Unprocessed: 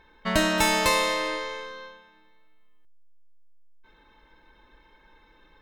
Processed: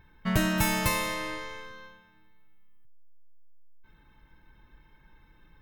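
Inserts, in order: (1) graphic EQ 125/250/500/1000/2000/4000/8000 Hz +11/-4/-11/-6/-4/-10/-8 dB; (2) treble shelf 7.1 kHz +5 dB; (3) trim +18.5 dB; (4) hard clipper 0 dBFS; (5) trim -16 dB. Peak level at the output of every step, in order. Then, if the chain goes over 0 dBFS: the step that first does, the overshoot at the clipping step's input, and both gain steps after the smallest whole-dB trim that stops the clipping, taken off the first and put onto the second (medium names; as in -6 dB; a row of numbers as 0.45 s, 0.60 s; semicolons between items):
-10.0 dBFS, -9.5 dBFS, +9.0 dBFS, 0.0 dBFS, -16.0 dBFS; step 3, 9.0 dB; step 3 +9.5 dB, step 5 -7 dB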